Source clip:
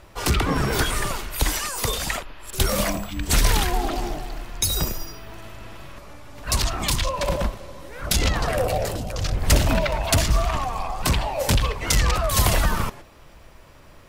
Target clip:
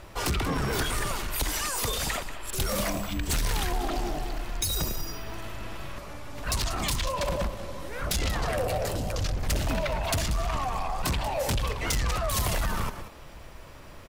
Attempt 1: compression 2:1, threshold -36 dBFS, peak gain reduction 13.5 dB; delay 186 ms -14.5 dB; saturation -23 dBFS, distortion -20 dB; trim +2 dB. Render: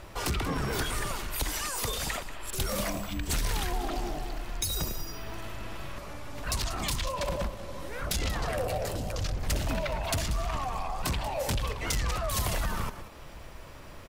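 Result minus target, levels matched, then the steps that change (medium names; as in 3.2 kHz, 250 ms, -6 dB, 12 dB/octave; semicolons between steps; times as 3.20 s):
compression: peak gain reduction +4 dB
change: compression 2:1, threshold -28.5 dBFS, peak gain reduction 9.5 dB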